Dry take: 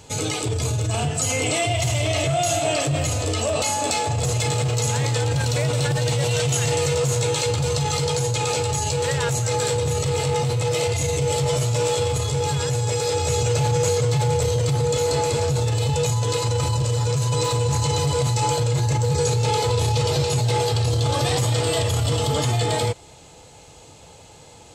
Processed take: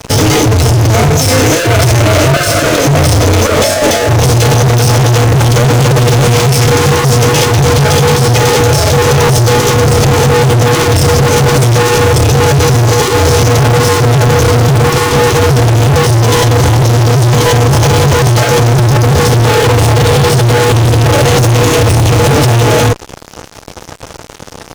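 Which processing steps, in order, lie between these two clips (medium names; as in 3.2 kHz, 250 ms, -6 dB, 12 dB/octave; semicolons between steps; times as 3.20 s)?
high-order bell 3.5 kHz -8 dB 2.9 oct; de-hum 167.1 Hz, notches 2; fuzz box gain 39 dB, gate -43 dBFS; formant shift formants -4 st; loudness maximiser +8 dB; trim -1 dB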